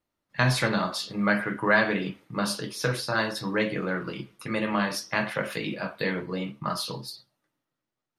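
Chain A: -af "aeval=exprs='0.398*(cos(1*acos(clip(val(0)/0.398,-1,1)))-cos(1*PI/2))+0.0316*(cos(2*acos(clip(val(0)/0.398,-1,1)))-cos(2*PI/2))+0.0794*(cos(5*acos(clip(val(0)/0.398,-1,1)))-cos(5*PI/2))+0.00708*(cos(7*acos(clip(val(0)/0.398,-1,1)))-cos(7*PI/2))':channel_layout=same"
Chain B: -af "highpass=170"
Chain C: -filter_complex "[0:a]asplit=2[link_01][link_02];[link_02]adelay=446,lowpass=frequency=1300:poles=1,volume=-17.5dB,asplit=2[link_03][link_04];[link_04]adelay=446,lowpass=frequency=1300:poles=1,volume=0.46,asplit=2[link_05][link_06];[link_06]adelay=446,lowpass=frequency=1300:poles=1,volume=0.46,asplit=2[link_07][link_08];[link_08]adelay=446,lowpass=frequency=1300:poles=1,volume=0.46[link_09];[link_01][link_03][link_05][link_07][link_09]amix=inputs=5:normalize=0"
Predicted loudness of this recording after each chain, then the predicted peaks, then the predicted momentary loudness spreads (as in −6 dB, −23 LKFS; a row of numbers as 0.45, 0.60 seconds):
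−23.5, −28.5, −28.0 LKFS; −9.5, −8.5, −8.5 dBFS; 9, 11, 11 LU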